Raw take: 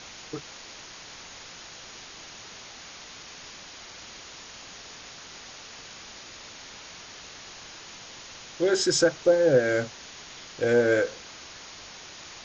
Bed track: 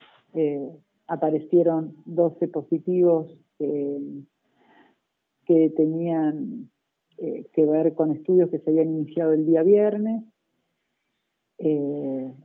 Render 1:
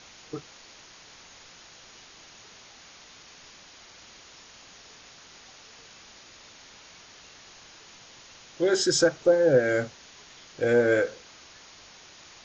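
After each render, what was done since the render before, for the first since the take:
noise reduction from a noise print 6 dB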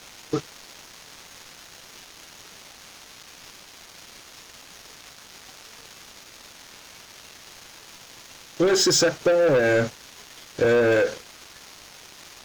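leveller curve on the samples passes 3
downward compressor, threshold −17 dBFS, peak gain reduction 5 dB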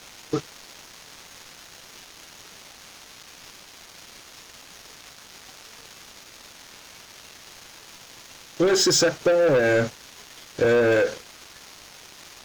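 no processing that can be heard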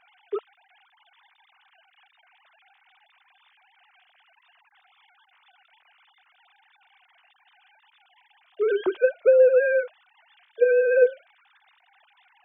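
three sine waves on the formant tracks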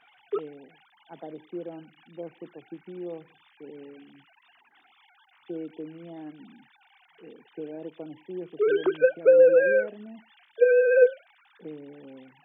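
mix in bed track −18 dB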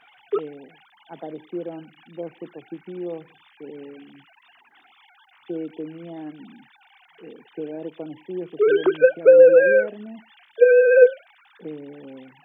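level +5.5 dB

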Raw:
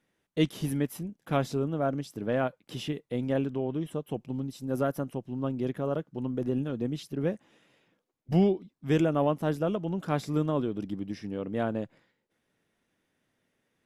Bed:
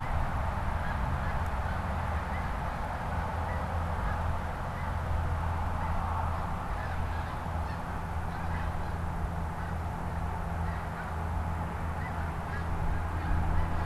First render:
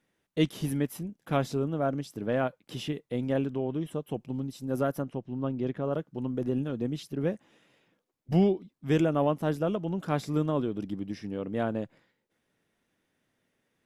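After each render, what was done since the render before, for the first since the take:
0:05.02–0:05.93: high-frequency loss of the air 95 metres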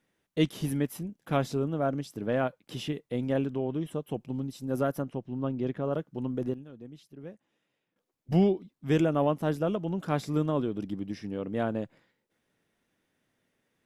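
0:06.19–0:08.31: duck −14.5 dB, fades 0.35 s logarithmic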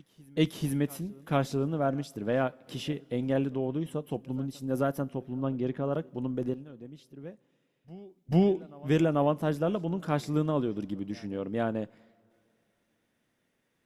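backwards echo 441 ms −23.5 dB
coupled-rooms reverb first 0.23 s, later 2.9 s, from −20 dB, DRR 18 dB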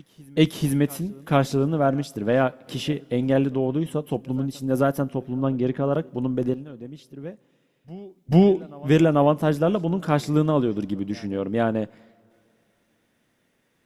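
level +7.5 dB

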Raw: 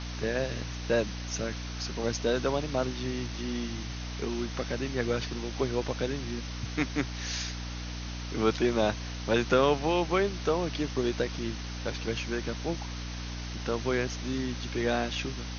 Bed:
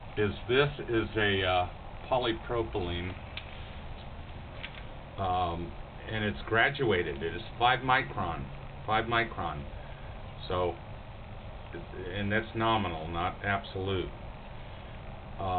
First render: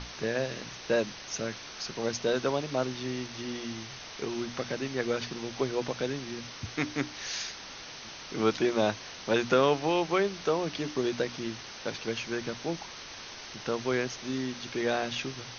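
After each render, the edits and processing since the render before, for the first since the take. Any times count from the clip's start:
mains-hum notches 60/120/180/240/300 Hz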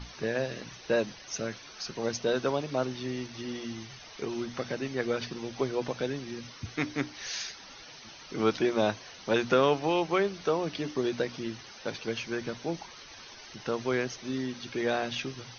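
broadband denoise 10 dB, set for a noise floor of −44 dBFS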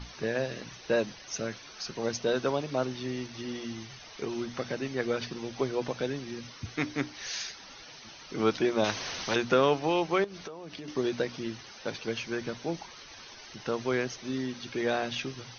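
0:08.84–0:09.36: every bin compressed towards the loudest bin 2 to 1
0:10.24–0:10.88: downward compressor 20 to 1, threshold −37 dBFS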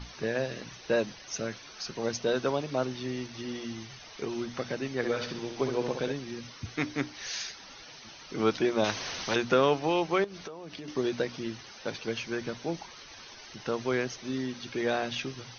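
0:04.96–0:06.12: flutter between parallel walls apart 11.3 metres, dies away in 0.59 s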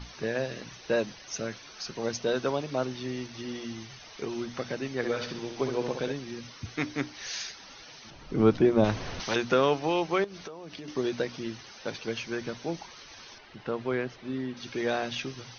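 0:08.10–0:09.20: spectral tilt −3.5 dB per octave
0:13.38–0:14.57: high-frequency loss of the air 260 metres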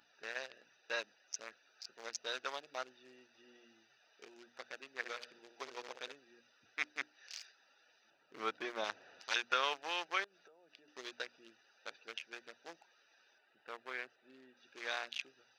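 adaptive Wiener filter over 41 samples
high-pass filter 1,400 Hz 12 dB per octave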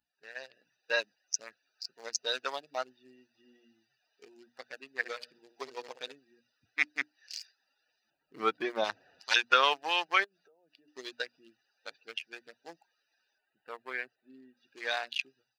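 spectral dynamics exaggerated over time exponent 1.5
automatic gain control gain up to 11.5 dB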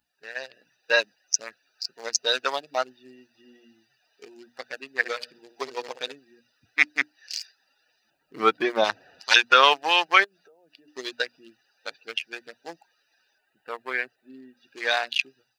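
level +9 dB
brickwall limiter −1 dBFS, peak gain reduction 3 dB

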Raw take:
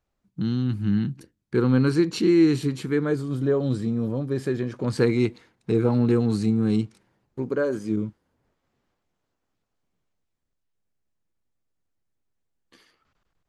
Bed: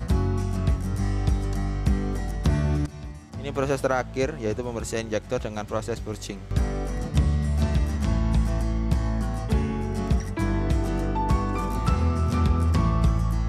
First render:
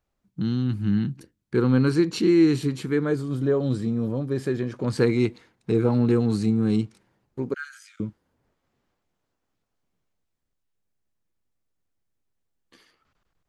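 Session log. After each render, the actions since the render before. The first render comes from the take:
0:07.54–0:08.00: Butterworth high-pass 1,300 Hz 96 dB per octave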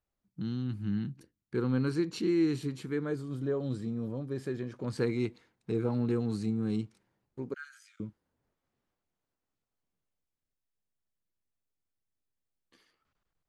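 level −9.5 dB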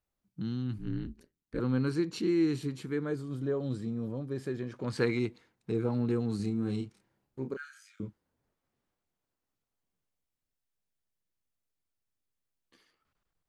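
0:00.78–0:01.60: ring modulation 84 Hz
0:04.61–0:05.18: parametric band 2,100 Hz +1 dB → +8.5 dB 3 octaves
0:06.36–0:08.08: double-tracking delay 30 ms −5.5 dB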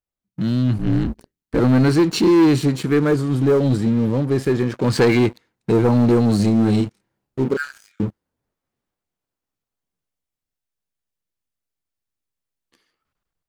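leveller curve on the samples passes 3
automatic gain control gain up to 6.5 dB

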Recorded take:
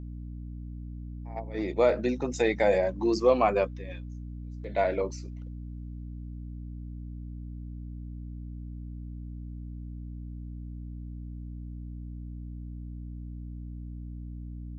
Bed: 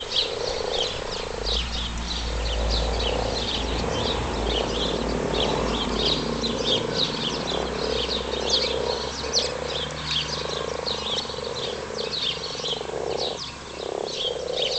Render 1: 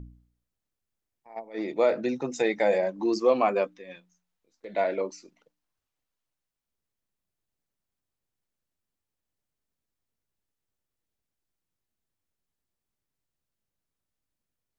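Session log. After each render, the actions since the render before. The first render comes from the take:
hum removal 60 Hz, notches 5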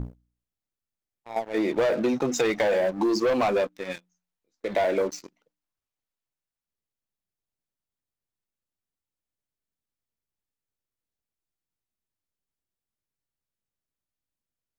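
leveller curve on the samples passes 3
downward compressor 4 to 1, threshold −22 dBFS, peak gain reduction 7.5 dB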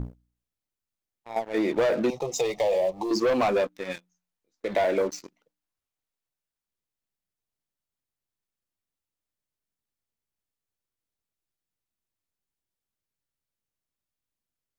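0:02.10–0:03.11: phaser with its sweep stopped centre 630 Hz, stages 4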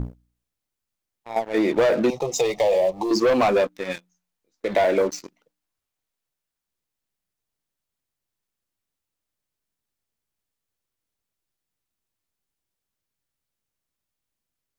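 level +4.5 dB

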